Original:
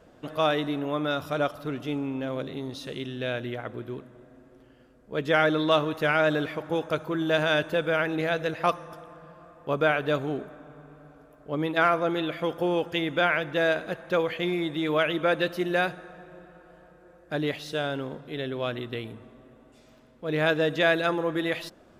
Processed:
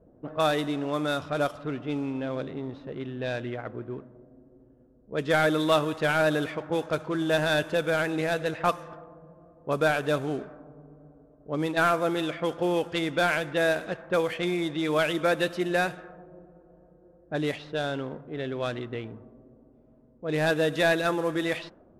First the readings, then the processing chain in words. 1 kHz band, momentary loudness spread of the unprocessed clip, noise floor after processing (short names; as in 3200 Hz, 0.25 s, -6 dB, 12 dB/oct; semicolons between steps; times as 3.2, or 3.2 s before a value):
-0.5 dB, 13 LU, -58 dBFS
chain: CVSD 64 kbps; low-pass opened by the level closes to 450 Hz, open at -23 dBFS